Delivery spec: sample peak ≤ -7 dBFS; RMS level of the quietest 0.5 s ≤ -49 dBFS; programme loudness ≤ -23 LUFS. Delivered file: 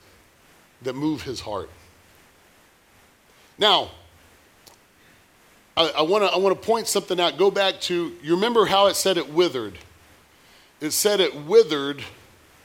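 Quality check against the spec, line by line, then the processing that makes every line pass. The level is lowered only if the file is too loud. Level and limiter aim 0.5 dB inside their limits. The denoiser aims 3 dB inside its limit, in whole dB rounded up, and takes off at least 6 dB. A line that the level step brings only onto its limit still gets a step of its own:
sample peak -4.0 dBFS: fail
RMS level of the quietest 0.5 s -56 dBFS: pass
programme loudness -21.5 LUFS: fail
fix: trim -2 dB; peak limiter -7.5 dBFS

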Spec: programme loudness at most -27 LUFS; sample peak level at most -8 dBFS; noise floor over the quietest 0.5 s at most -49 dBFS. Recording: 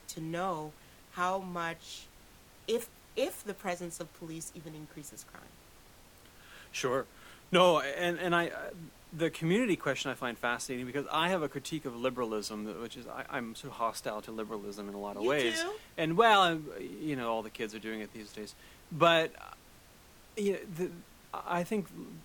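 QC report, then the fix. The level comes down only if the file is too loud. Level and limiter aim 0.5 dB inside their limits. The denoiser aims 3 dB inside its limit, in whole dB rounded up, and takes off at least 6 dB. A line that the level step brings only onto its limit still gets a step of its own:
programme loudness -33.0 LUFS: pass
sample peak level -11.5 dBFS: pass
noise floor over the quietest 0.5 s -57 dBFS: pass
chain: none needed

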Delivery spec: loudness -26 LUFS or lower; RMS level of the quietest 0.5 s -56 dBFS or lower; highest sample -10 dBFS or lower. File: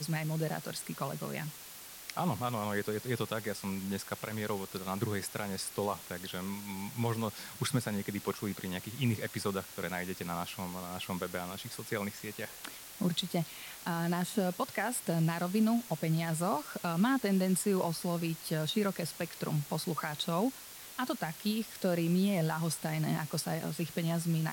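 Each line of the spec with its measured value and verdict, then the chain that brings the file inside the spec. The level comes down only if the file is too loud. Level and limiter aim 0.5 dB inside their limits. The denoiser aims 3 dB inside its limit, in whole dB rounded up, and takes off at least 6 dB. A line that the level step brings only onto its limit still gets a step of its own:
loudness -34.5 LUFS: pass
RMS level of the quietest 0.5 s -49 dBFS: fail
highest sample -19.0 dBFS: pass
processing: noise reduction 10 dB, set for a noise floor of -49 dBFS

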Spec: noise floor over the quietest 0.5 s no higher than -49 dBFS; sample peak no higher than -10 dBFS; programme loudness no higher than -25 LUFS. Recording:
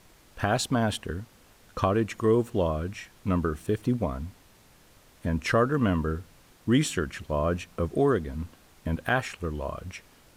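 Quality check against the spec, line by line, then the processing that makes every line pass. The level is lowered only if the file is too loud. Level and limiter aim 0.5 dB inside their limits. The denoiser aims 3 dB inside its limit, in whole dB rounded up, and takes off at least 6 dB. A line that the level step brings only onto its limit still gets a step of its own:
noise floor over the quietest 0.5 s -57 dBFS: pass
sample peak -11.0 dBFS: pass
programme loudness -28.0 LUFS: pass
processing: none needed

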